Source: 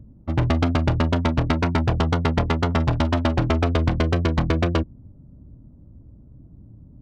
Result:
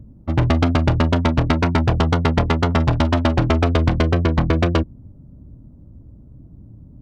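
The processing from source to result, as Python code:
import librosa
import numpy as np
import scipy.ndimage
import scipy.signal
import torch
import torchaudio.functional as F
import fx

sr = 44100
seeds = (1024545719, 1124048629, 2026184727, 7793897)

y = fx.high_shelf(x, sr, hz=4400.0, db=-8.0, at=(4.11, 4.53))
y = y * 10.0 ** (3.5 / 20.0)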